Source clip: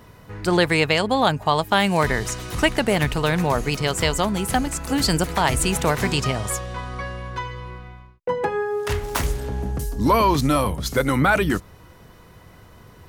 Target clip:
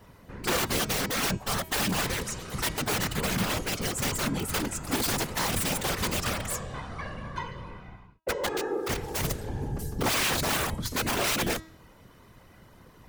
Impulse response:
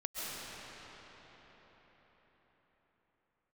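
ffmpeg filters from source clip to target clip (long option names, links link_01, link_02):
-af "aeval=exprs='(mod(5.96*val(0)+1,2)-1)/5.96':channel_layout=same,afftfilt=real='hypot(re,im)*cos(2*PI*random(0))':imag='hypot(re,im)*sin(2*PI*random(1))':win_size=512:overlap=0.75,bandreject=frequency=320.9:width_type=h:width=4,bandreject=frequency=641.8:width_type=h:width=4,bandreject=frequency=962.7:width_type=h:width=4,bandreject=frequency=1283.6:width_type=h:width=4,bandreject=frequency=1604.5:width_type=h:width=4,bandreject=frequency=1925.4:width_type=h:width=4,bandreject=frequency=2246.3:width_type=h:width=4,bandreject=frequency=2567.2:width_type=h:width=4,bandreject=frequency=2888.1:width_type=h:width=4,bandreject=frequency=3209:width_type=h:width=4,bandreject=frequency=3529.9:width_type=h:width=4,bandreject=frequency=3850.8:width_type=h:width=4,bandreject=frequency=4171.7:width_type=h:width=4,bandreject=frequency=4492.6:width_type=h:width=4,bandreject=frequency=4813.5:width_type=h:width=4,bandreject=frequency=5134.4:width_type=h:width=4,bandreject=frequency=5455.3:width_type=h:width=4,bandreject=frequency=5776.2:width_type=h:width=4,bandreject=frequency=6097.1:width_type=h:width=4,bandreject=frequency=6418:width_type=h:width=4,bandreject=frequency=6738.9:width_type=h:width=4,bandreject=frequency=7059.8:width_type=h:width=4,bandreject=frequency=7380.7:width_type=h:width=4,bandreject=frequency=7701.6:width_type=h:width=4,bandreject=frequency=8022.5:width_type=h:width=4,bandreject=frequency=8343.4:width_type=h:width=4"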